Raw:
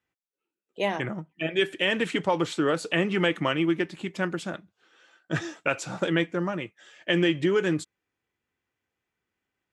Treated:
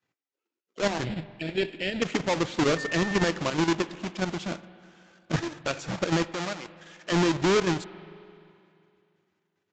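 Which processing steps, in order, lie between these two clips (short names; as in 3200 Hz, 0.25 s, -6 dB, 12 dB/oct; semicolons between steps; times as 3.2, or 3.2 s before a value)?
half-waves squared off; 6.24–7.12 HPF 540 Hz 6 dB/oct; level quantiser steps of 10 dB; limiter -18 dBFS, peak gain reduction 8.5 dB; 1.04–2.02 fixed phaser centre 2700 Hz, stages 4; spring tank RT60 2.6 s, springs 43/50 ms, chirp 55 ms, DRR 15.5 dB; 2.76–3.3 whine 1800 Hz -33 dBFS; Vorbis 64 kbps 16000 Hz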